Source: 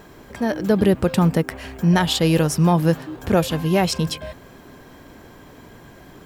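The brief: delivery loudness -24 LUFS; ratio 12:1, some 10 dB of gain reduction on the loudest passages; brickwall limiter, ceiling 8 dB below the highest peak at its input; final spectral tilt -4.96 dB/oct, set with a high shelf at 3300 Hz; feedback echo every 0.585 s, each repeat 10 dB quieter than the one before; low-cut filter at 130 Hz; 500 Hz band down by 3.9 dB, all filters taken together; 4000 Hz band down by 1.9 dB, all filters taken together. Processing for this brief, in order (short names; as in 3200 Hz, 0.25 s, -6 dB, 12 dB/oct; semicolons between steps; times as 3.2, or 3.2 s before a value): HPF 130 Hz; bell 500 Hz -5 dB; high shelf 3300 Hz +6 dB; bell 4000 Hz -7 dB; compressor 12:1, threshold -24 dBFS; limiter -20.5 dBFS; feedback echo 0.585 s, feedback 32%, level -10 dB; gain +7 dB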